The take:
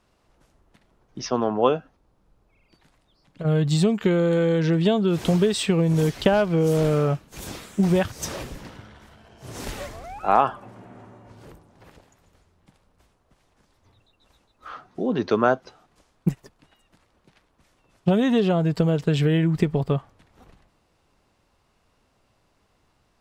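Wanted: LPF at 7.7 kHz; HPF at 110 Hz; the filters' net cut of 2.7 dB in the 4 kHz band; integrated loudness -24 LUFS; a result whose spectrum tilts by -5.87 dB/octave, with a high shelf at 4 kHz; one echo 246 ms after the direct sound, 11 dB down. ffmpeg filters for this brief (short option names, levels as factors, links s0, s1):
-af "highpass=110,lowpass=7700,highshelf=f=4000:g=8,equalizer=f=4000:t=o:g=-8,aecho=1:1:246:0.282,volume=0.841"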